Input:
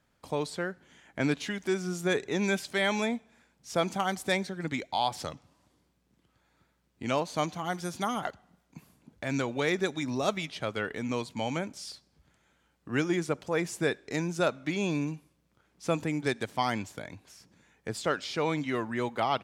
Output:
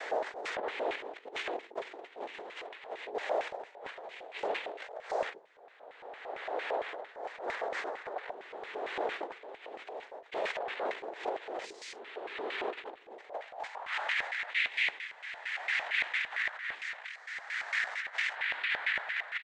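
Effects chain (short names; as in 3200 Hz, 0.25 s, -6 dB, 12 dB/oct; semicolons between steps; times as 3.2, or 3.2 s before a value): spectral swells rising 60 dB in 2.49 s; noise vocoder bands 6; high-pass sweep 420 Hz -> 1900 Hz, 13.22–14.22; negative-ratio compressor -30 dBFS, ratio -0.5; LFO band-pass square 4.4 Hz 680–2200 Hz; harmoniser -4 st -18 dB; attack slew limiter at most 520 dB/s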